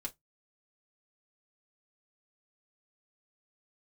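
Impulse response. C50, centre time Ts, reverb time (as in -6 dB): 24.0 dB, 6 ms, not exponential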